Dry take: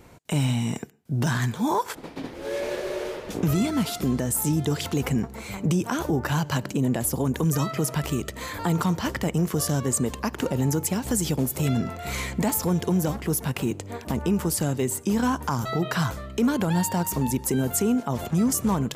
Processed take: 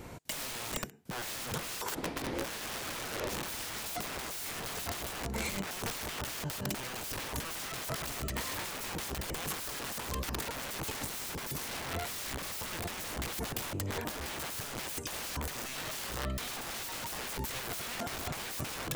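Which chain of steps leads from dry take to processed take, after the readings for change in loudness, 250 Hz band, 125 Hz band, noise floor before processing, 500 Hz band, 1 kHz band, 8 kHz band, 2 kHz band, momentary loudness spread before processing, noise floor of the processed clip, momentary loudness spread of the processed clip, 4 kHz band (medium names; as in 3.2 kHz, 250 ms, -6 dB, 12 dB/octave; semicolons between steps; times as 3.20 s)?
-11.0 dB, -19.5 dB, -17.5 dB, -41 dBFS, -13.0 dB, -9.5 dB, -8.5 dB, -4.5 dB, 7 LU, -41 dBFS, 1 LU, -2.5 dB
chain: integer overflow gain 29 dB; compressor with a negative ratio -37 dBFS, ratio -0.5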